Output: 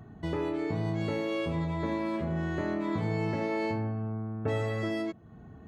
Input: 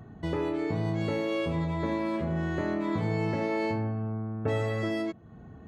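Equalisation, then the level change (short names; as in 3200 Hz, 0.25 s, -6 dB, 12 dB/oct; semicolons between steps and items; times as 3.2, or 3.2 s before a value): notch 520 Hz, Q 15; -1.5 dB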